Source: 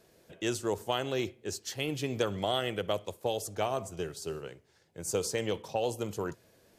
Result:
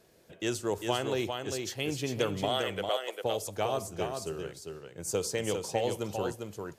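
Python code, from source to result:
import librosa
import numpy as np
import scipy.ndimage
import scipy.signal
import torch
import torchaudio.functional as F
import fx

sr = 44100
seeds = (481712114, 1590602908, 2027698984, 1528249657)

p1 = fx.highpass(x, sr, hz=420.0, slope=24, at=(2.49, 3.21))
y = p1 + fx.echo_single(p1, sr, ms=400, db=-5.0, dry=0)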